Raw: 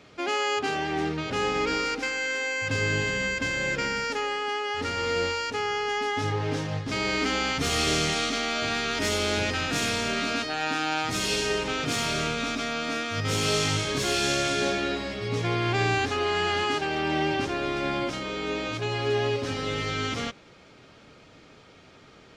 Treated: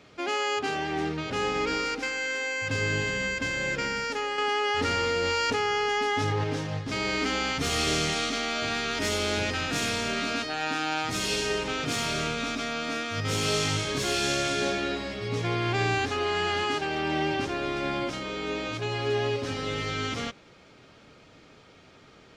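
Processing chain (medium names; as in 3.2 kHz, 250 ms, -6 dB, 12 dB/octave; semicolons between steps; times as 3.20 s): 4.38–6.44 s: level flattener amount 100%; trim -1.5 dB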